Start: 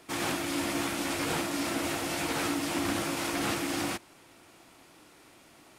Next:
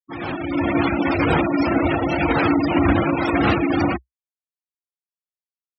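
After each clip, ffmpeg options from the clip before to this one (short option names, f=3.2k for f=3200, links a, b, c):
-af "afftfilt=real='re*gte(hypot(re,im),0.0355)':imag='im*gte(hypot(re,im),0.0355)':win_size=1024:overlap=0.75,equalizer=f=64:w=1.5:g=15,dynaudnorm=f=100:g=11:m=10.5dB,volume=3dB"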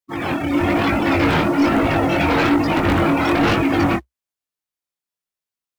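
-filter_complex "[0:a]asplit=2[a][b];[b]acrusher=bits=2:mode=log:mix=0:aa=0.000001,volume=-9.5dB[c];[a][c]amix=inputs=2:normalize=0,aeval=exprs='0.75*sin(PI/2*2.82*val(0)/0.75)':c=same,flanger=delay=18.5:depth=6.5:speed=1.1,volume=-7dB"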